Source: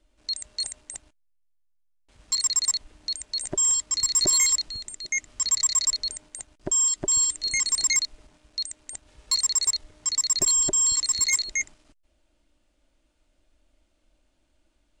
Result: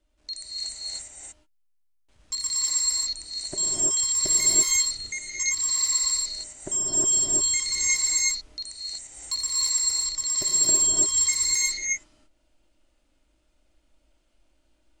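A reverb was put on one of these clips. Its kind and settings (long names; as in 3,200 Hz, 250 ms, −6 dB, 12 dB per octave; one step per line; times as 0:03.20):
reverb whose tail is shaped and stops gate 370 ms rising, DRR −6 dB
level −6 dB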